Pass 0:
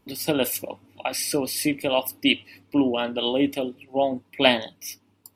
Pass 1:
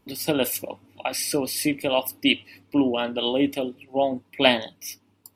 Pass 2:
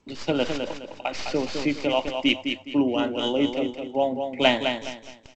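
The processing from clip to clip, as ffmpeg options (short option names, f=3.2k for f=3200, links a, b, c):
-af anull
-filter_complex "[0:a]aecho=1:1:208|416|624|832:0.473|0.147|0.0455|0.0141,acrossover=split=150|4700[a][b][c];[c]aeval=exprs='abs(val(0))':c=same[d];[a][b][d]amix=inputs=3:normalize=0,volume=-1dB" -ar 16000 -c:a g722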